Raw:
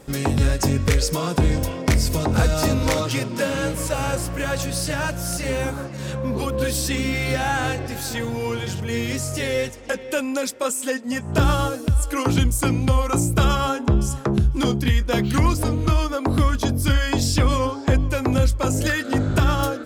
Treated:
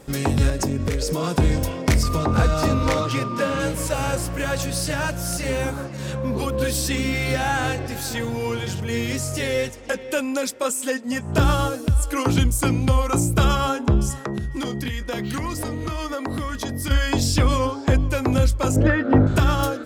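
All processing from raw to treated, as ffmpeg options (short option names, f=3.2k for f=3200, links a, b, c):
-filter_complex "[0:a]asettb=1/sr,asplit=3[a][b][c];[a]atrim=end=0.494[d];[b]atrim=start=0.49:end=1.24,asetpts=PTS-STARTPTS,afade=t=in:d=0.004:c=qsin,afade=t=out:st=0.746:d=0.004:c=qsin,equalizer=f=300:w=0.58:g=7,aeval=exprs='val(0)+0.00794*sin(2*PI*610*n/s)':c=same,acompressor=threshold=-19dB:ratio=6:attack=3.2:release=140:knee=1:detection=peak[e];[c]atrim=start=1.236[f];[d][e]acrossfade=d=0.004:c1=hsin:c2=qsin[g];[g][f]acrossfade=d=0.004:c1=qsin:c2=hsin,asettb=1/sr,asplit=3[h][i][j];[h]atrim=end=2.034[k];[i]atrim=start=2.03:end=3.6,asetpts=PTS-STARTPTS,afade=t=in:d=0.004:c=qsin,afade=t=out:st=1.566:d=0.004:c=qsin,highshelf=f=6.1k:g=-10,aeval=exprs='val(0)+0.0355*sin(2*PI*1200*n/s)':c=same[l];[j]atrim=start=3.596[m];[k][l]acrossfade=d=0.004:c1=hsin:c2=qsin[n];[n][m]acrossfade=d=0.004:c1=qsin:c2=hsin,asettb=1/sr,asplit=3[o][p][q];[o]atrim=end=14.104[r];[p]atrim=start=14.1:end=16.91,asetpts=PTS-STARTPTS,afade=t=in:d=0.004:c=qsin,afade=t=out:st=2.806:d=0.004:c=qsin,lowshelf=f=110:g=-9.5,acompressor=threshold=-23dB:ratio=5:attack=3.2:release=140:knee=1:detection=peak,aeval=exprs='val(0)+0.00631*sin(2*PI*1900*n/s)':c=same[s];[q]atrim=start=16.906[t];[r][s]acrossfade=d=0.004:c1=hsin:c2=qsin[u];[u][t]acrossfade=d=0.004:c1=qsin:c2=hsin,asettb=1/sr,asplit=3[v][w][x];[v]atrim=end=18.764[y];[w]atrim=start=18.76:end=19.27,asetpts=PTS-STARTPTS,afade=t=in:d=0.004:c=qsin,afade=t=out:st=0.506:d=0.004:c=qsin,lowpass=1.3k,acontrast=68[z];[x]atrim=start=19.266[aa];[y][z]acrossfade=d=0.004:c1=hsin:c2=qsin[ab];[ab][aa]acrossfade=d=0.004:c1=qsin:c2=hsin"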